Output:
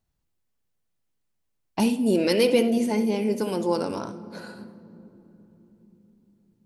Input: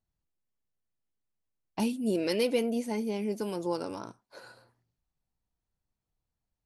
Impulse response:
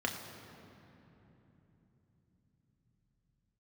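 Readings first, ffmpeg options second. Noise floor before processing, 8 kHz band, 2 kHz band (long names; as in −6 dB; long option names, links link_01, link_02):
below −85 dBFS, +7.0 dB, +7.5 dB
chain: -filter_complex "[0:a]asplit=2[link_01][link_02];[1:a]atrim=start_sample=2205,adelay=63[link_03];[link_02][link_03]afir=irnorm=-1:irlink=0,volume=-16dB[link_04];[link_01][link_04]amix=inputs=2:normalize=0,volume=7dB"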